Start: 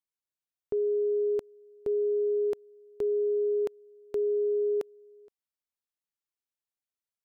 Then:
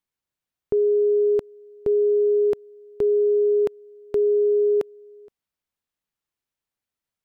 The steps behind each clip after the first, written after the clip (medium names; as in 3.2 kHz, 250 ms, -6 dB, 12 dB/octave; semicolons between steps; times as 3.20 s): tone controls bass +5 dB, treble -5 dB; trim +7.5 dB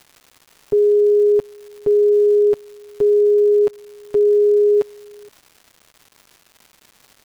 comb 7.2 ms, depth 88%; crackle 390 per s -36 dBFS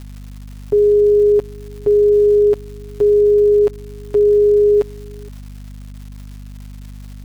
hum 50 Hz, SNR 18 dB; trim +2 dB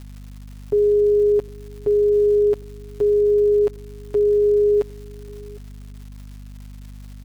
delay 757 ms -23.5 dB; trim -4.5 dB